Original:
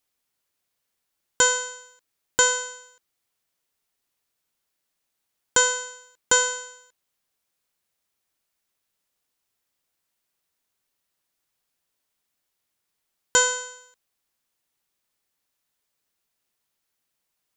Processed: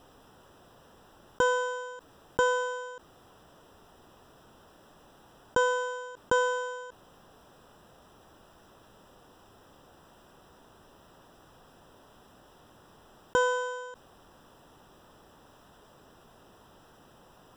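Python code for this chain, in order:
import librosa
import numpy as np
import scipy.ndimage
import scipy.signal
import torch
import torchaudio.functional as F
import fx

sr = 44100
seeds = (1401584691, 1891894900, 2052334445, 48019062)

y = scipy.signal.lfilter(np.full(20, 1.0 / 20), 1.0, x)
y = fx.env_flatten(y, sr, amount_pct=50)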